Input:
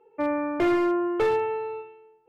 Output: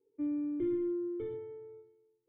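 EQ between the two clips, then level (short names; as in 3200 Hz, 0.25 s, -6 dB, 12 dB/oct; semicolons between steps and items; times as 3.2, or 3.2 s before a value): vocal tract filter i; bell 130 Hz +11 dB 0.96 oct; fixed phaser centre 720 Hz, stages 6; 0.0 dB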